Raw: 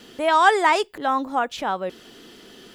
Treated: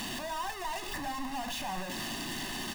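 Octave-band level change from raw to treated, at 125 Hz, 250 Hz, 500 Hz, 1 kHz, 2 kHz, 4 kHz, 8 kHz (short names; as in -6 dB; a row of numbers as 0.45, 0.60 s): n/a, -8.5 dB, -18.5 dB, -17.0 dB, -14.5 dB, -5.5 dB, -0.5 dB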